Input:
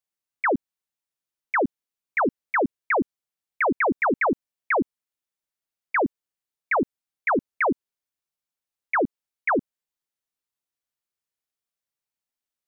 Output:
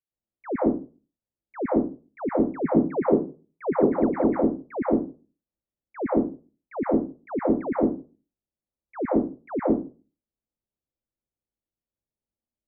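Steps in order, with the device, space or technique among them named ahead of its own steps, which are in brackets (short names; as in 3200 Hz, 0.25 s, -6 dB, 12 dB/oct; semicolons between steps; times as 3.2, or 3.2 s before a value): 2.64–3.79 fifteen-band EQ 160 Hz +12 dB, 400 Hz +12 dB, 1000 Hz +4 dB; television next door (compressor 3:1, threshold -22 dBFS, peak gain reduction 10 dB; LPF 440 Hz 12 dB/oct; reverb RT60 0.35 s, pre-delay 0.107 s, DRR -7.5 dB)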